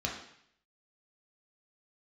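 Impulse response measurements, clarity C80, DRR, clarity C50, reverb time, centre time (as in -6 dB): 8.0 dB, -2.5 dB, 5.0 dB, 0.65 s, 34 ms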